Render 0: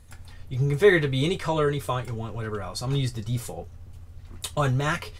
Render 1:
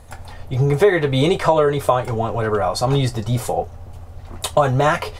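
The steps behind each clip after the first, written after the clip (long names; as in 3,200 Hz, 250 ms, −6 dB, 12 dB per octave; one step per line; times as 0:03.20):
parametric band 710 Hz +13 dB 1.4 octaves
downward compressor 4 to 1, threshold −19 dBFS, peak gain reduction 11.5 dB
level +7 dB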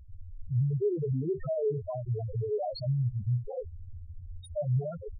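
dynamic equaliser 1,100 Hz, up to −7 dB, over −31 dBFS, Q 0.95
brickwall limiter −16 dBFS, peak gain reduction 11 dB
spectral peaks only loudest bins 2
level −3 dB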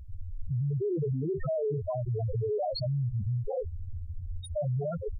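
brickwall limiter −31.5 dBFS, peak gain reduction 10.5 dB
level +6 dB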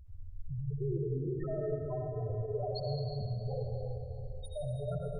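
convolution reverb RT60 3.3 s, pre-delay 58 ms, DRR −1 dB
level −8.5 dB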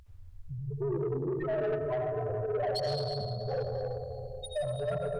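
mid-hump overdrive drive 19 dB, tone 6,400 Hz, clips at −22.5 dBFS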